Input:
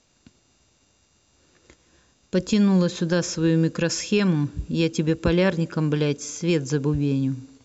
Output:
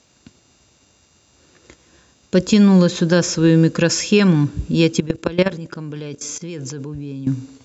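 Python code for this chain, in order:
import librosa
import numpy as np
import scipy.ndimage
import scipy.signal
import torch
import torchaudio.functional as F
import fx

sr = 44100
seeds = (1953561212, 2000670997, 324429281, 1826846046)

y = scipy.signal.sosfilt(scipy.signal.butter(2, 56.0, 'highpass', fs=sr, output='sos'), x)
y = fx.level_steps(y, sr, step_db=18, at=(5.0, 7.27))
y = F.gain(torch.from_numpy(y), 7.0).numpy()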